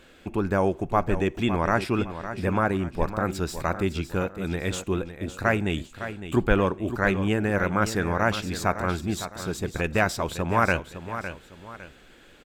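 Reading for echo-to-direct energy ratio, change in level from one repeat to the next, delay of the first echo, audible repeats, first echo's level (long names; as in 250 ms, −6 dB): −10.5 dB, −9.0 dB, 558 ms, 2, −11.0 dB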